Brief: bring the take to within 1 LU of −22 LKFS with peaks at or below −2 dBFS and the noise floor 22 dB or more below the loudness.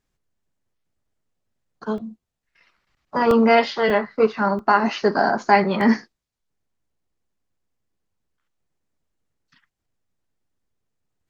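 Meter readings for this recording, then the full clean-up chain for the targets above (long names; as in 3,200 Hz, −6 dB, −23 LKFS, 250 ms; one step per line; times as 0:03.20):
number of dropouts 5; longest dropout 1.8 ms; integrated loudness −19.5 LKFS; sample peak −2.5 dBFS; target loudness −22.0 LKFS
→ repair the gap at 0:01.98/0:03.31/0:03.90/0:04.59/0:05.81, 1.8 ms
level −2.5 dB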